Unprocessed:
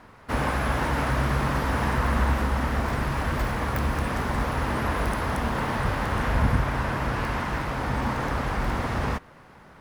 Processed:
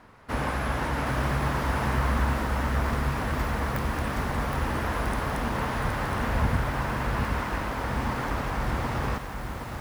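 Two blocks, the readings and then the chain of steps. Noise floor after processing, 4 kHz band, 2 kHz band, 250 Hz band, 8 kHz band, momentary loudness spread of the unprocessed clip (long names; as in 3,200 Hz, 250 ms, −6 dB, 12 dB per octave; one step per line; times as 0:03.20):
−36 dBFS, −1.5 dB, −2.0 dB, −2.0 dB, −1.0 dB, 4 LU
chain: feedback echo at a low word length 768 ms, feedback 35%, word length 7 bits, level −5 dB
level −3 dB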